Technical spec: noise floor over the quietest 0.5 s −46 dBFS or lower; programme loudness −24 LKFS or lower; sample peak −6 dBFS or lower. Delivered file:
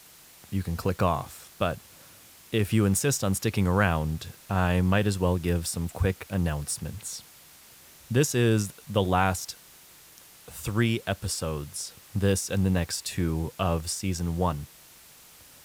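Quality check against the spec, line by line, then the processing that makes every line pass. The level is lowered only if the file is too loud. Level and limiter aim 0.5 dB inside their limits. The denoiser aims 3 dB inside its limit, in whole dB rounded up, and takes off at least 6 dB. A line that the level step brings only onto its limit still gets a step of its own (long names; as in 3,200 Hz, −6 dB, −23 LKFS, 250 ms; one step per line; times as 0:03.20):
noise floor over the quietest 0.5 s −52 dBFS: in spec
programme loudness −27.5 LKFS: in spec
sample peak −8.0 dBFS: in spec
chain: no processing needed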